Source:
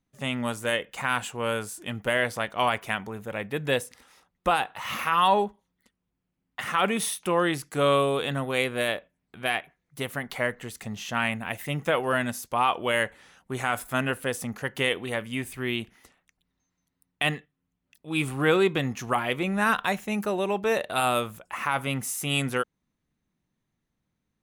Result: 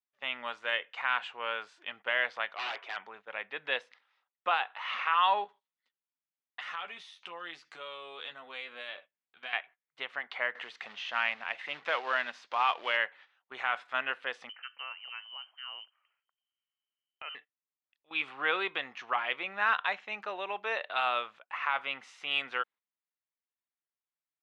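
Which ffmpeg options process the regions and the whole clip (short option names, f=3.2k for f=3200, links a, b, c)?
-filter_complex "[0:a]asettb=1/sr,asplit=3[a][b][c];[a]atrim=end=2.554[d];[b]atrim=start=2.55:end=2.97,asetpts=PTS-STARTPTS,afade=t=in:d=0.004:c=qsin,afade=t=out:st=0.416:d=0.004:c=qsin,highpass=f=340:t=q:w=1.8,aeval=exprs='0.0562*(abs(mod(val(0)/0.0562+3,4)-2)-1)':c=same[e];[c]atrim=start=2.966[f];[d][e]acrossfade=d=0.004:c1=hsin:c2=qsin[g];[g][f]acrossfade=d=0.004:c1=qsin:c2=hsin,asettb=1/sr,asplit=3[h][i][j];[h]atrim=end=5.444[k];[i]atrim=start=5.44:end=9.53,asetpts=PTS-STARTPTS,afade=t=in:d=0.004:c=qsin,afade=t=out:st=4.086:d=0.004:c=qsin,bass=f=250:g=6,treble=f=4k:g=12,acompressor=threshold=-33dB:ratio=5:attack=3.2:release=140:knee=1:detection=peak,asplit=2[l][m];[m]adelay=12,volume=-5.5dB[n];[l][n]amix=inputs=2:normalize=0,atrim=end_sample=180369[o];[j]atrim=start=9.526[p];[k][o]acrossfade=d=0.004:c1=hsin:c2=qsin[q];[q][p]acrossfade=d=0.004:c1=qsin:c2=hsin,asettb=1/sr,asplit=3[r][s][t];[r]atrim=end=10.554[u];[s]atrim=start=10.55:end=12.97,asetpts=PTS-STARTPTS,afade=t=in:d=0.004:c=qsin,afade=t=out:st=2.416:d=0.004:c=qsin,highpass=f=120:w=0.5412,highpass=f=120:w=1.3066,acompressor=mode=upward:threshold=-28dB:ratio=2.5:attack=3.2:release=140:knee=2.83:detection=peak,acrusher=bits=3:mode=log:mix=0:aa=0.000001[v];[t]atrim=start=12.966[w];[u][v]acrossfade=d=0.004:c1=hsin:c2=qsin[x];[x][w]acrossfade=d=0.004:c1=qsin:c2=hsin,asettb=1/sr,asplit=3[y][z][aa];[y]atrim=end=14.494[ab];[z]atrim=start=14.49:end=17.35,asetpts=PTS-STARTPTS,afade=t=in:d=0.004:c=qsin,afade=t=out:st=2.856:d=0.004:c=qsin,acompressor=threshold=-56dB:ratio=1.5:attack=3.2:release=140:knee=1:detection=peak,lowpass=f=2.7k:t=q:w=0.5098,lowpass=f=2.7k:t=q:w=0.6013,lowpass=f=2.7k:t=q:w=0.9,lowpass=f=2.7k:t=q:w=2.563,afreqshift=-3200[ac];[aa]atrim=start=17.346[ad];[ab][ac]acrossfade=d=0.004:c1=hsin:c2=qsin[ae];[ae][ad]acrossfade=d=0.004:c1=qsin:c2=hsin,highpass=910,agate=range=-12dB:threshold=-49dB:ratio=16:detection=peak,lowpass=f=3.7k:w=0.5412,lowpass=f=3.7k:w=1.3066,volume=-2dB"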